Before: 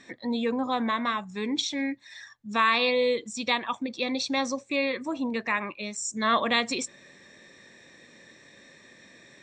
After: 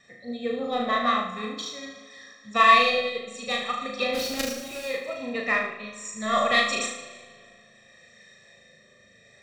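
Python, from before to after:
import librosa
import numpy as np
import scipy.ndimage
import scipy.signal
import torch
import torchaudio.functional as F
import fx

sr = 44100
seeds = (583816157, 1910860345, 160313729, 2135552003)

p1 = fx.reverse_delay_fb(x, sr, ms=156, feedback_pct=56, wet_db=-13.5)
p2 = p1 + 0.95 * np.pad(p1, (int(1.6 * sr / 1000.0), 0))[:len(p1)]
p3 = 10.0 ** (-20.0 / 20.0) * np.tanh(p2 / 10.0 ** (-20.0 / 20.0))
p4 = p2 + F.gain(torch.from_numpy(p3), -6.5).numpy()
p5 = fx.quant_companded(p4, sr, bits=2, at=(4.13, 4.85), fade=0.02)
p6 = fx.rotary(p5, sr, hz=0.7)
p7 = p6 + fx.room_flutter(p6, sr, wall_m=6.4, rt60_s=0.76, dry=0)
p8 = fx.rev_spring(p7, sr, rt60_s=3.0, pass_ms=(40, 51), chirp_ms=70, drr_db=14.5)
y = fx.upward_expand(p8, sr, threshold_db=-31.0, expansion=1.5)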